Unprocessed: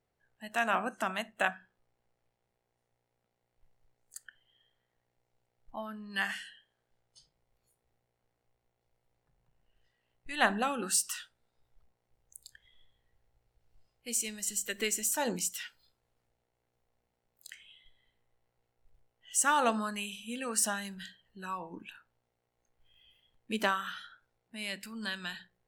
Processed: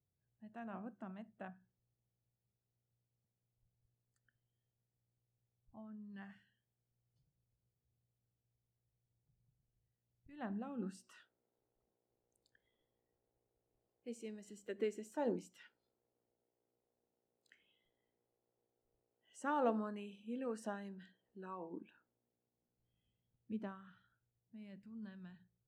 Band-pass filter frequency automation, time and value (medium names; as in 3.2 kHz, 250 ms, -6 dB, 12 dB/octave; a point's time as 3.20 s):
band-pass filter, Q 1.4
10.63 s 110 Hz
11.19 s 360 Hz
21.76 s 360 Hz
23.68 s 110 Hz